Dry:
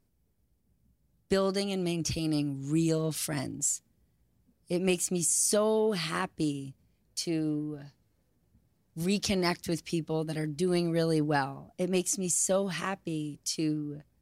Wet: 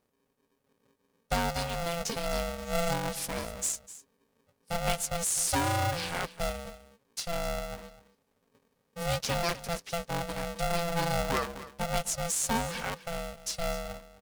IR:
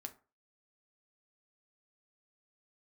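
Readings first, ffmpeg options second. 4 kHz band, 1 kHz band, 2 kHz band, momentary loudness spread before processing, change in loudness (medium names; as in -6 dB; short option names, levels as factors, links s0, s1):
+1.0 dB, +5.5 dB, +3.0 dB, 9 LU, -2.0 dB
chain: -filter_complex "[0:a]highpass=40,asplit=2[s0][s1];[s1]aecho=0:1:253:0.158[s2];[s0][s2]amix=inputs=2:normalize=0,aeval=exprs='val(0)*sgn(sin(2*PI*340*n/s))':c=same,volume=0.794"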